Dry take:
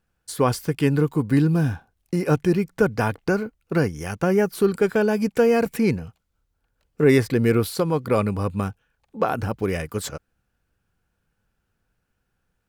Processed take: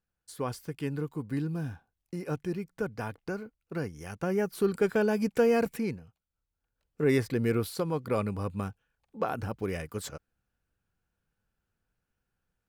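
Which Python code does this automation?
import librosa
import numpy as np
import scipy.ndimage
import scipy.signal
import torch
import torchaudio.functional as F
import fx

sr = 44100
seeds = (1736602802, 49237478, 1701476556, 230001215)

y = fx.gain(x, sr, db=fx.line((3.74, -13.5), (4.85, -6.0), (5.66, -6.0), (6.04, -17.0), (7.15, -8.5)))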